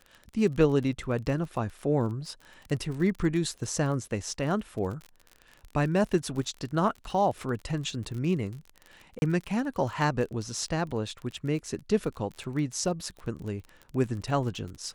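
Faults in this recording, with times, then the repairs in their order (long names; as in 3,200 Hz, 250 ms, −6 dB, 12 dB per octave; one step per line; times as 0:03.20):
surface crackle 32 per second −35 dBFS
0:09.19–0:09.22: drop-out 31 ms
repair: click removal
repair the gap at 0:09.19, 31 ms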